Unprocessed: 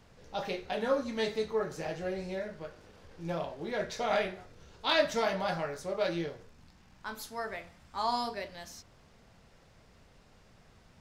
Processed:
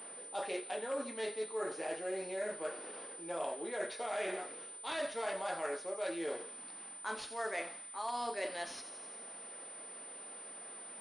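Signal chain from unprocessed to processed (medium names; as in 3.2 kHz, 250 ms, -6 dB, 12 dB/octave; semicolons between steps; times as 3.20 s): wavefolder -20.5 dBFS; reverse; compression 12:1, threshold -43 dBFS, peak gain reduction 19 dB; reverse; high-pass 290 Hz 24 dB/octave; feedback echo behind a high-pass 86 ms, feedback 69%, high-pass 3.5 kHz, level -10 dB; class-D stage that switches slowly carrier 9 kHz; trim +9 dB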